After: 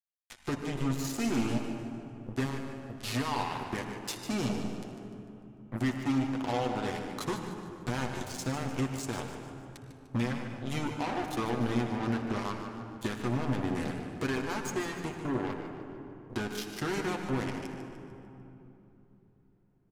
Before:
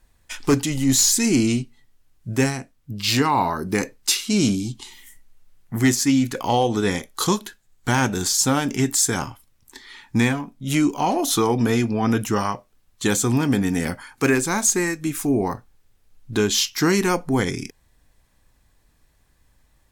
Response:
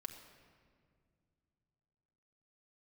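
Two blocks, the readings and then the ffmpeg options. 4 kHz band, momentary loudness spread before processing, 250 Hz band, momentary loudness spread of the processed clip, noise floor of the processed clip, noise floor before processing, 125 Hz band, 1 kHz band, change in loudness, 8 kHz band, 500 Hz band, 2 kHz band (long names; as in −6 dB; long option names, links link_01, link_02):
−15.5 dB, 10 LU, −11.5 dB, 13 LU, −62 dBFS, −62 dBFS, −10.0 dB, −11.0 dB, −13.0 dB, −22.5 dB, −11.5 dB, −12.0 dB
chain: -filter_complex "[0:a]lowpass=frequency=2400:poles=1,acompressor=threshold=-40dB:ratio=2,acrusher=bits=4:mix=0:aa=0.5,aecho=1:1:149|298|447|596|745:0.299|0.14|0.0659|0.031|0.0146[link_01];[1:a]atrim=start_sample=2205,asetrate=25578,aresample=44100[link_02];[link_01][link_02]afir=irnorm=-1:irlink=0"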